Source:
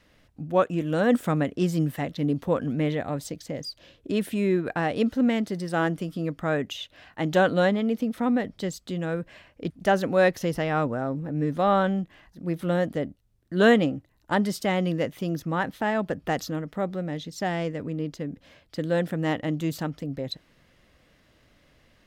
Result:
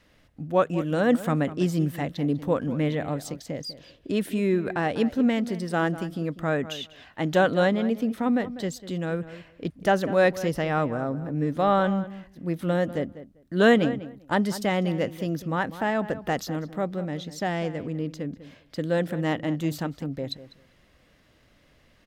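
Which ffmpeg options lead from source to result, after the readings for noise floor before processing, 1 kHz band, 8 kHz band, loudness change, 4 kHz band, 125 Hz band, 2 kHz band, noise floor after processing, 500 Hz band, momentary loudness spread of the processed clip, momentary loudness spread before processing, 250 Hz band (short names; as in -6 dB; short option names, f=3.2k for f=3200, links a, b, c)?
-62 dBFS, 0.0 dB, 0.0 dB, 0.0 dB, 0.0 dB, 0.0 dB, 0.0 dB, -60 dBFS, 0.0 dB, 12 LU, 13 LU, 0.0 dB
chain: -filter_complex "[0:a]asplit=2[a][b];[b]adelay=197,lowpass=f=2.4k:p=1,volume=-14dB,asplit=2[c][d];[d]adelay=197,lowpass=f=2.4k:p=1,volume=0.16[e];[a][c][e]amix=inputs=3:normalize=0"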